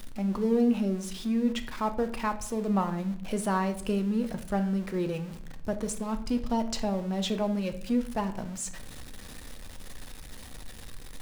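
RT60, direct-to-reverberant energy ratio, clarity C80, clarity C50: 0.60 s, 7.5 dB, 16.0 dB, 12.5 dB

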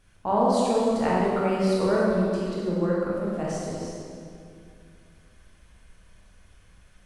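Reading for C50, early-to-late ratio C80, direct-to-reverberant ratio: -2.5 dB, -0.5 dB, -6.0 dB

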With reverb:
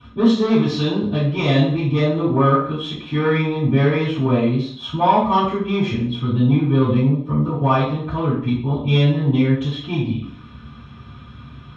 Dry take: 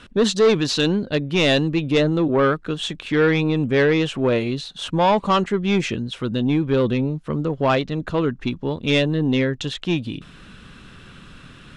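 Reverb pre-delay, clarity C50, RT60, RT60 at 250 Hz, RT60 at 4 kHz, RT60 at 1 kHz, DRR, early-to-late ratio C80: 3 ms, 4.0 dB, 0.55 s, 0.60 s, 0.55 s, 0.55 s, -21.5 dB, 7.0 dB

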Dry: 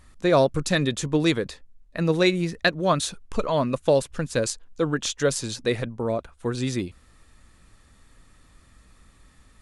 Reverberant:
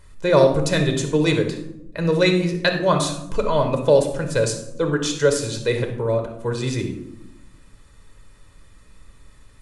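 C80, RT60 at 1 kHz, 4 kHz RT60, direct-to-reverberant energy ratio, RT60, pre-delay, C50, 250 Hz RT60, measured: 10.0 dB, 0.70 s, 0.45 s, 4.0 dB, 0.90 s, 7 ms, 7.0 dB, 1.3 s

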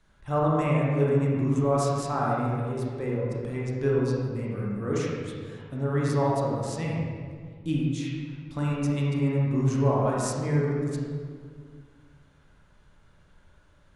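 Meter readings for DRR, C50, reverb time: -5.0 dB, -2.5 dB, 2.0 s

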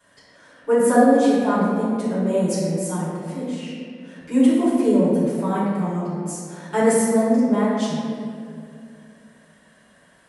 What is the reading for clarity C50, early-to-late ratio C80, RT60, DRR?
-2.0 dB, 0.0 dB, 2.3 s, -12.0 dB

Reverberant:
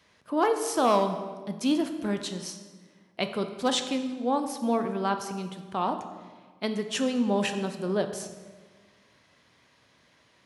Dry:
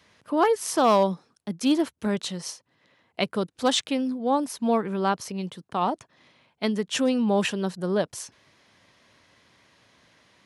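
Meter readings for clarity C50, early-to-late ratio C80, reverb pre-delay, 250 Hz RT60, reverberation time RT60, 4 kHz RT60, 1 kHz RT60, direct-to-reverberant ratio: 9.0 dB, 10.5 dB, 5 ms, 1.7 s, 1.5 s, 1.1 s, 1.4 s, 6.5 dB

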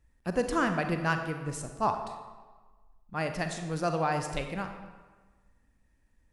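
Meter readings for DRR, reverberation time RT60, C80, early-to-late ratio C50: 6.0 dB, 1.4 s, 8.5 dB, 7.0 dB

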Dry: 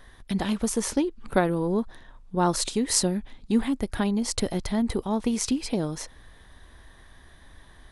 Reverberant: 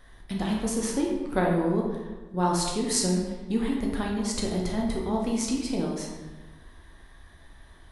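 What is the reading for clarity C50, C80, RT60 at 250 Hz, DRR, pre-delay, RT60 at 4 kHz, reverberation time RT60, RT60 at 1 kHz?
2.5 dB, 4.5 dB, 1.4 s, -1.5 dB, 10 ms, 0.80 s, 1.3 s, 1.2 s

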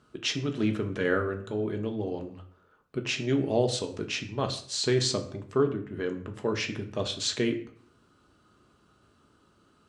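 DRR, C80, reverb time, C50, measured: 4.5 dB, 15.0 dB, 0.55 s, 12.0 dB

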